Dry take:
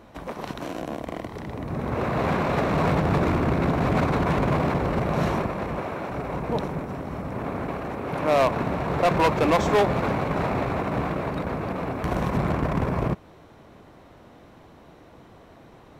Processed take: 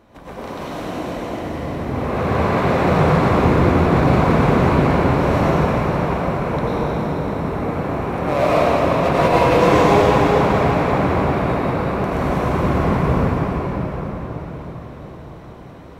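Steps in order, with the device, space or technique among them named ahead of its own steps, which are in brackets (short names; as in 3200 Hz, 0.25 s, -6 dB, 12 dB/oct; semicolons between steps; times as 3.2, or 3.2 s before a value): cathedral (reverb RT60 5.5 s, pre-delay 87 ms, DRR -10.5 dB); gain -3.5 dB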